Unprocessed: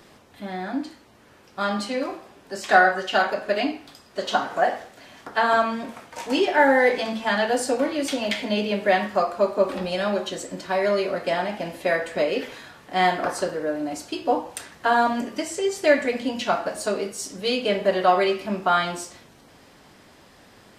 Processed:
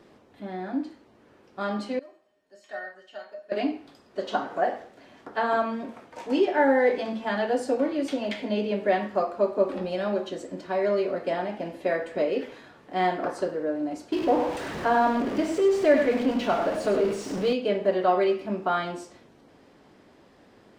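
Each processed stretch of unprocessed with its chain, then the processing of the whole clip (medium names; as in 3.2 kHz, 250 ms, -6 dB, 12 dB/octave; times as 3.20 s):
1.99–3.52 s: tilt shelf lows -4.5 dB, about 1.3 kHz + feedback comb 620 Hz, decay 0.22 s, harmonics odd, mix 90%
14.12–17.53 s: jump at every zero crossing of -23 dBFS + treble shelf 6.1 kHz -9 dB + delay 100 ms -8 dB
whole clip: low-pass 3.8 kHz 6 dB/octave; peaking EQ 350 Hz +7.5 dB 1.9 oct; trim -7.5 dB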